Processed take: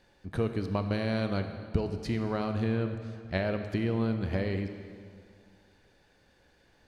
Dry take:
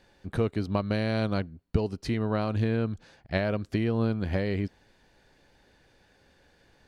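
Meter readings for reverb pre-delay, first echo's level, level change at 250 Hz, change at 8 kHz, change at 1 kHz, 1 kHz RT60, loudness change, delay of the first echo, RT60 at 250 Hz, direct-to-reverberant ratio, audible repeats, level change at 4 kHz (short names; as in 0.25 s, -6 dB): 24 ms, none, -2.0 dB, n/a, -2.0 dB, 2.2 s, -2.5 dB, none, 2.2 s, 7.0 dB, none, -2.5 dB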